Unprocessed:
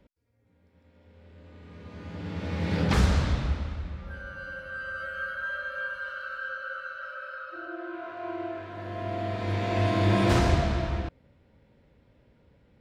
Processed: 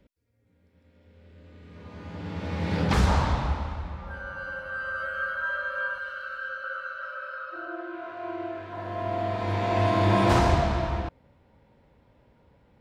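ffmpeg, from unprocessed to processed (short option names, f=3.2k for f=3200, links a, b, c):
-af "asetnsamples=n=441:p=0,asendcmd='1.76 equalizer g 4;3.07 equalizer g 13.5;5.98 equalizer g 2;6.64 equalizer g 8;7.81 equalizer g 1.5;8.72 equalizer g 8',equalizer=f=900:t=o:w=0.84:g=-4.5"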